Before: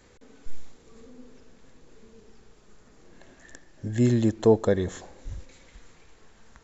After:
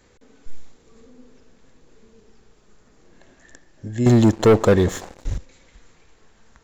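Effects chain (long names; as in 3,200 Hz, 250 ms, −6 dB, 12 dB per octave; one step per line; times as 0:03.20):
0:04.06–0:05.38: leveller curve on the samples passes 3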